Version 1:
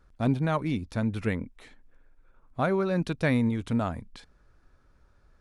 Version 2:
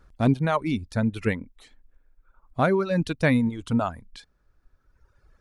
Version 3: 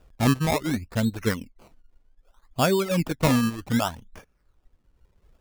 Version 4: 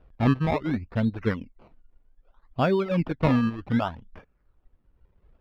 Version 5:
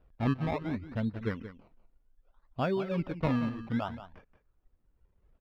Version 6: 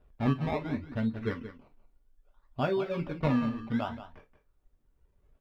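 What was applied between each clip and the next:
reverb removal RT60 1.7 s; gain +5 dB
decimation with a swept rate 21×, swing 100% 0.65 Hz
air absorption 350 m
echo 0.178 s -12.5 dB; gain -7.5 dB
non-linear reverb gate 80 ms falling, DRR 5 dB

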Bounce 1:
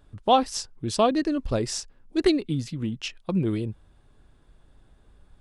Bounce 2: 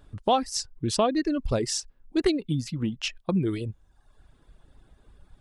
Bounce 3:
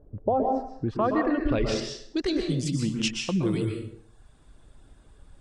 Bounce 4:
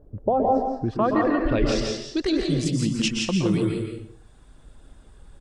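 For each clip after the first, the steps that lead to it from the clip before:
reverb removal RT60 0.86 s; compressor 2:1, threshold -26 dBFS, peak gain reduction 7.5 dB; gain +3 dB
limiter -18.5 dBFS, peak gain reduction 7.5 dB; low-pass sweep 510 Hz -> 8500 Hz, 0.18–2.56; plate-style reverb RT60 0.66 s, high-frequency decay 0.75×, pre-delay 0.11 s, DRR 2 dB
echo 0.168 s -4.5 dB; gain +2.5 dB

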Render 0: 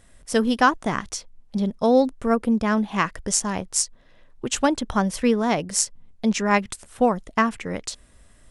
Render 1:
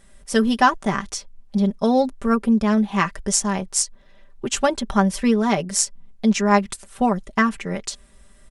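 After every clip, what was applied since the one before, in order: comb 5.1 ms, depth 69%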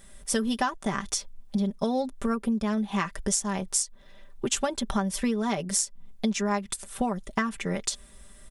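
high shelf 9800 Hz +11 dB; compressor 6:1, threshold -24 dBFS, peak gain reduction 13.5 dB; small resonant body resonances 3500 Hz, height 8 dB, ringing for 25 ms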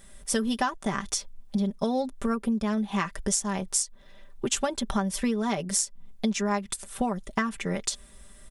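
nothing audible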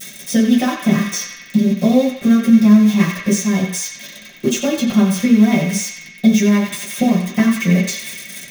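switching spikes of -20 dBFS; narrowing echo 90 ms, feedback 80%, band-pass 2200 Hz, level -5 dB; reverb RT60 0.35 s, pre-delay 3 ms, DRR -11.5 dB; gain -8.5 dB

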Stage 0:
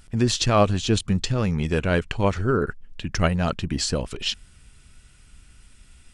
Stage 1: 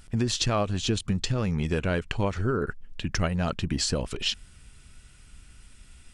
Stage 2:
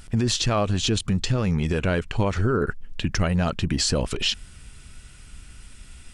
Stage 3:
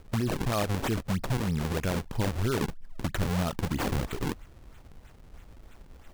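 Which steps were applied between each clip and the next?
compressor 6:1, threshold -22 dBFS, peak gain reduction 10 dB
limiter -20 dBFS, peak gain reduction 8.5 dB; gain +6.5 dB
decimation with a swept rate 41×, swing 160% 3.1 Hz; gain -6 dB

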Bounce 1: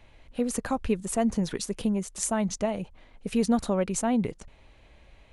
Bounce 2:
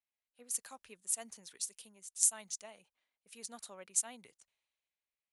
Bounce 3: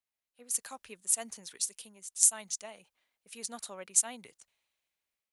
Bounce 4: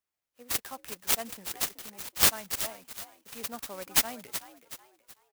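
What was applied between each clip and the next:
differentiator; three-band expander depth 70%; gain -4 dB
AGC gain up to 6.5 dB
frequency-shifting echo 0.375 s, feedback 37%, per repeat +66 Hz, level -12 dB; clock jitter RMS 0.065 ms; gain +3.5 dB

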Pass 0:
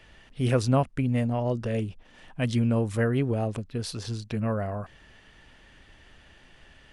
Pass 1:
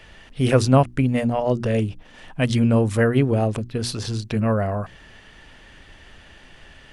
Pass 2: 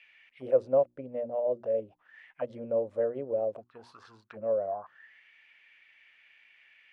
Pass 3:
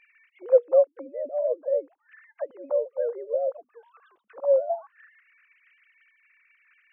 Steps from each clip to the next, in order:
notches 60/120/180/240/300/360 Hz; gain +7.5 dB
auto-wah 550–2500 Hz, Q 8.2, down, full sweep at -18 dBFS
sine-wave speech; gain +5 dB

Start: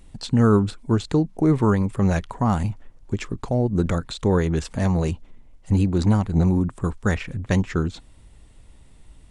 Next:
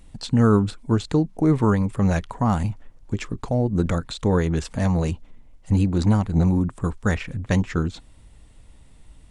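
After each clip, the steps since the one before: notch 380 Hz, Q 12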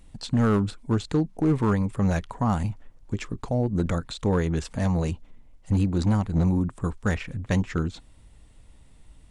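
hard clip -12.5 dBFS, distortion -18 dB; gain -3 dB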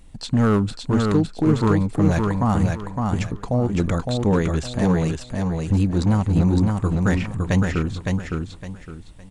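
feedback echo 0.561 s, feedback 28%, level -3.5 dB; gain +3.5 dB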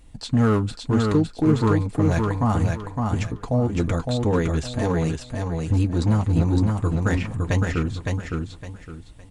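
notch comb 190 Hz

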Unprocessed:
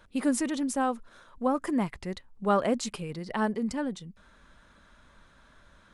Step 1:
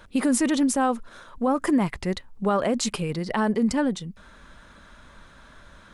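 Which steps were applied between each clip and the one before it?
limiter -22.5 dBFS, peak gain reduction 9 dB; gain +8.5 dB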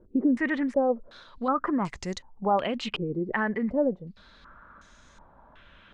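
stepped low-pass 2.7 Hz 380–6500 Hz; gain -6.5 dB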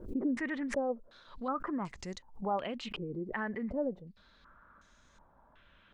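backwards sustainer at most 120 dB/s; gain -9 dB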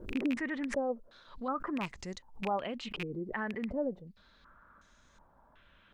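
rattling part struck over -39 dBFS, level -26 dBFS

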